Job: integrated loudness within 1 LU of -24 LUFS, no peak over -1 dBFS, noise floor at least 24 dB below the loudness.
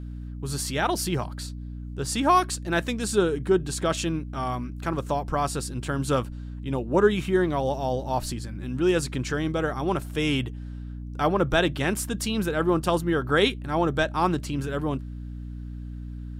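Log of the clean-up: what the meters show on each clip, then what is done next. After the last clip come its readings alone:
hum 60 Hz; highest harmonic 300 Hz; hum level -33 dBFS; loudness -26.0 LUFS; peak level -8.0 dBFS; loudness target -24.0 LUFS
-> de-hum 60 Hz, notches 5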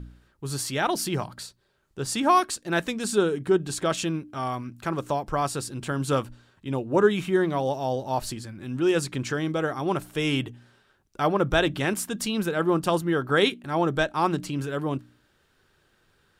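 hum not found; loudness -26.0 LUFS; peak level -7.5 dBFS; loudness target -24.0 LUFS
-> trim +2 dB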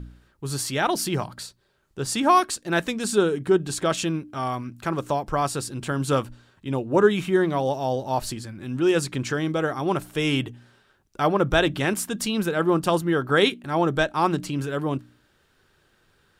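loudness -24.0 LUFS; peak level -5.5 dBFS; noise floor -64 dBFS

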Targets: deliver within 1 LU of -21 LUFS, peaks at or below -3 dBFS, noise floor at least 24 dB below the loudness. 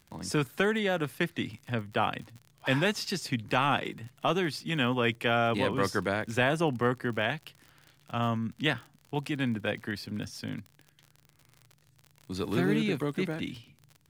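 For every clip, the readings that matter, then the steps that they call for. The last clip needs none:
tick rate 46 per s; loudness -30.0 LUFS; peak level -14.0 dBFS; loudness target -21.0 LUFS
-> de-click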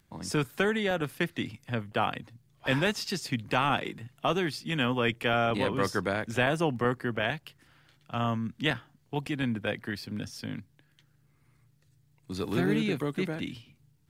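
tick rate 0.14 per s; loudness -30.5 LUFS; peak level -13.5 dBFS; loudness target -21.0 LUFS
-> trim +9.5 dB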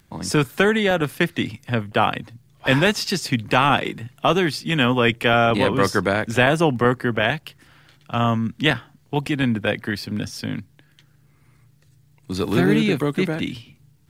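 loudness -21.0 LUFS; peak level -4.0 dBFS; noise floor -57 dBFS

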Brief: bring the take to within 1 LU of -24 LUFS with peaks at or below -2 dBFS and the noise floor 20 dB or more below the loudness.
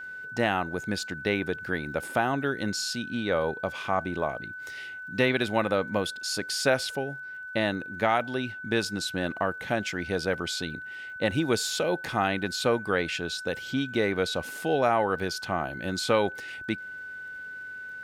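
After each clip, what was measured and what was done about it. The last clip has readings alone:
tick rate 34 per s; steady tone 1.5 kHz; tone level -37 dBFS; loudness -29.0 LUFS; peak level -8.5 dBFS; loudness target -24.0 LUFS
-> de-click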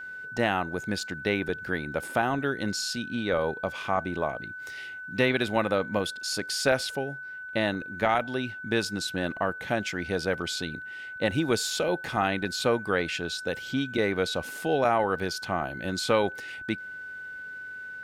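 tick rate 0.055 per s; steady tone 1.5 kHz; tone level -37 dBFS
-> band-stop 1.5 kHz, Q 30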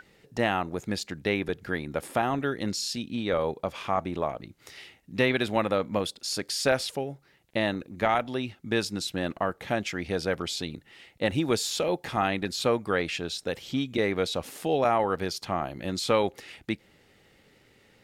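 steady tone not found; loudness -29.0 LUFS; peak level -8.5 dBFS; loudness target -24.0 LUFS
-> trim +5 dB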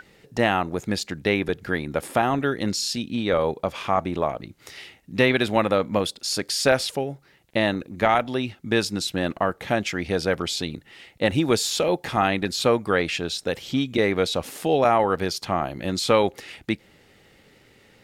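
loudness -24.0 LUFS; peak level -3.5 dBFS; noise floor -57 dBFS

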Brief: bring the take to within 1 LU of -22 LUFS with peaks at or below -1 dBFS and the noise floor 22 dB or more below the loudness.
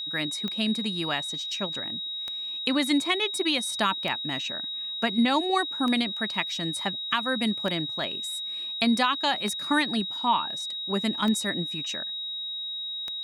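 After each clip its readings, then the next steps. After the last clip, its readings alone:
clicks found 8; steady tone 3.8 kHz; tone level -31 dBFS; loudness -27.0 LUFS; peak level -9.5 dBFS; loudness target -22.0 LUFS
-> de-click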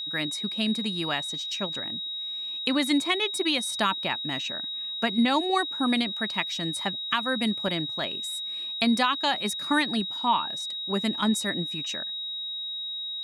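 clicks found 0; steady tone 3.8 kHz; tone level -31 dBFS
-> band-stop 3.8 kHz, Q 30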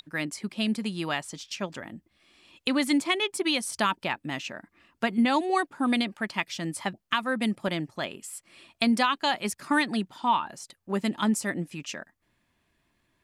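steady tone not found; loudness -28.0 LUFS; peak level -10.5 dBFS; loudness target -22.0 LUFS
-> trim +6 dB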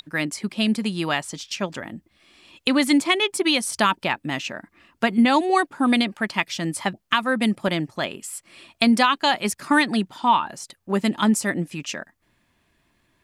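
loudness -22.0 LUFS; peak level -4.5 dBFS; noise floor -68 dBFS

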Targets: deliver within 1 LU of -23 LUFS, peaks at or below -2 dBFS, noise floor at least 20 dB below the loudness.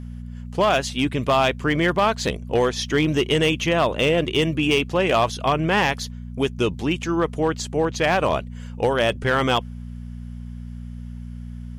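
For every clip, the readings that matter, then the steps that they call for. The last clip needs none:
clipped samples 0.7%; clipping level -11.5 dBFS; hum 60 Hz; highest harmonic 240 Hz; hum level -32 dBFS; loudness -21.5 LUFS; peak level -11.5 dBFS; loudness target -23.0 LUFS
-> clip repair -11.5 dBFS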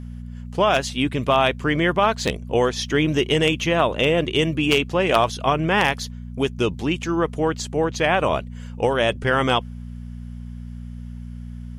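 clipped samples 0.0%; hum 60 Hz; highest harmonic 240 Hz; hum level -32 dBFS
-> de-hum 60 Hz, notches 4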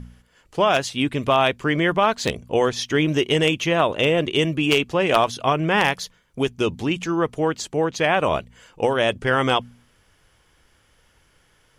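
hum not found; loudness -21.0 LUFS; peak level -2.0 dBFS; loudness target -23.0 LUFS
-> trim -2 dB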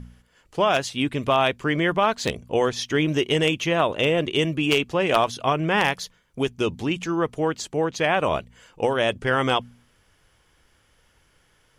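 loudness -23.0 LUFS; peak level -4.0 dBFS; noise floor -63 dBFS

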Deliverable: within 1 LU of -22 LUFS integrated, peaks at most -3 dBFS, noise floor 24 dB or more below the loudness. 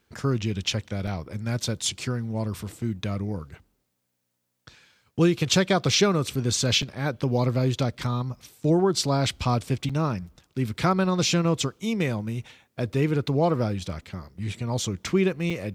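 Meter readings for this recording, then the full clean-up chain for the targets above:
dropouts 4; longest dropout 5.1 ms; loudness -25.5 LUFS; peak level -8.0 dBFS; loudness target -22.0 LUFS
-> interpolate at 1.07/6.82/9.89/15.50 s, 5.1 ms; trim +3.5 dB

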